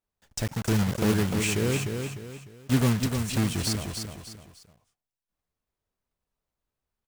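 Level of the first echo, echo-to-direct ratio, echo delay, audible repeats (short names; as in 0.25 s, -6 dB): -6.0 dB, -5.5 dB, 0.301 s, 3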